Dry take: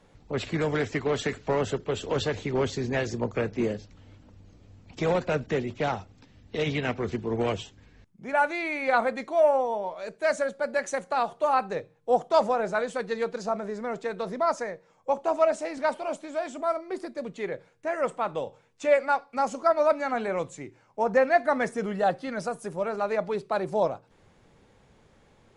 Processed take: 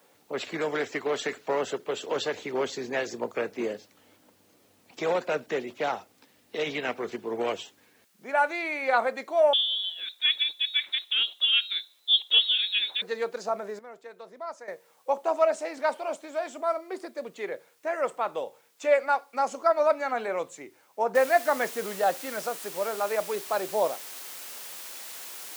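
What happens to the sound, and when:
9.53–13.02 inverted band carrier 4000 Hz
13.79–14.68 gain -12 dB
21.15 noise floor step -67 dB -41 dB
whole clip: HPF 360 Hz 12 dB/oct

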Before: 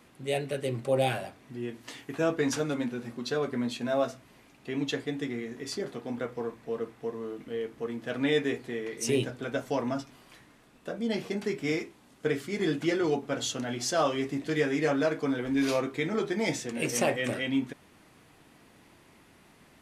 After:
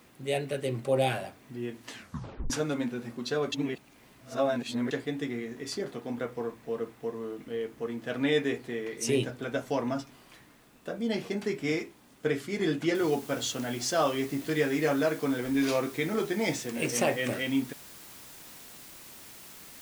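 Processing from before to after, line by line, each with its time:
1.89 tape stop 0.61 s
3.52–4.91 reverse
12.95 noise floor step -68 dB -49 dB

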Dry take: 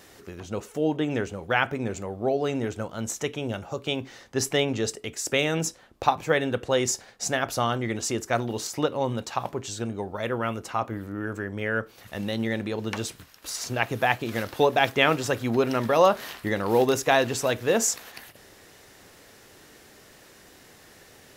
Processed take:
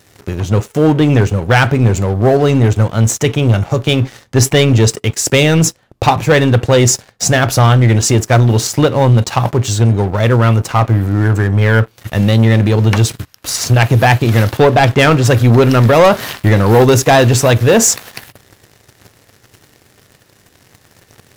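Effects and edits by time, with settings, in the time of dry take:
14.57–15.25 LPF 2800 Hz 6 dB/oct
whole clip: bell 110 Hz +13 dB 1.1 oct; sample leveller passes 3; gain +3.5 dB

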